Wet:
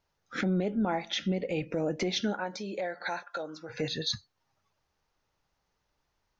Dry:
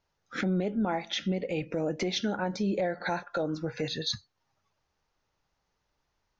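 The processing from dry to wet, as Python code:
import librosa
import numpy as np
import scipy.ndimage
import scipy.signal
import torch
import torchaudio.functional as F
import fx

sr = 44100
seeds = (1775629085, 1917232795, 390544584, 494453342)

y = fx.highpass(x, sr, hz=fx.line((2.32, 560.0), (3.69, 1200.0)), slope=6, at=(2.32, 3.69), fade=0.02)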